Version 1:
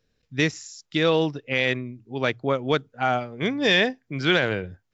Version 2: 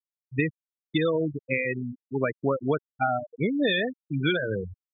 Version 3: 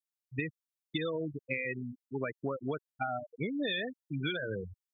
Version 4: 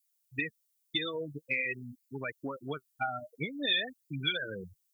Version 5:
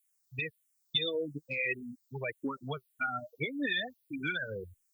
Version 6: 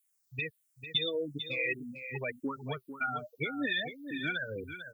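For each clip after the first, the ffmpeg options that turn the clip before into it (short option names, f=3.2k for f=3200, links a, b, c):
-af "acompressor=threshold=-22dB:ratio=20,afftfilt=real='re*gte(hypot(re,im),0.112)':imag='im*gte(hypot(re,im),0.112)':win_size=1024:overlap=0.75,volume=3dB"
-af "highshelf=f=2.5k:g=8,acompressor=threshold=-23dB:ratio=6,volume=-7dB"
-af "flanger=delay=0.4:depth=8.6:regen=42:speed=0.49:shape=sinusoidal,crystalizer=i=7:c=0"
-filter_complex "[0:a]asplit=2[a][b];[b]afreqshift=-1.7[c];[a][c]amix=inputs=2:normalize=1,volume=4dB"
-af "aecho=1:1:447:0.316"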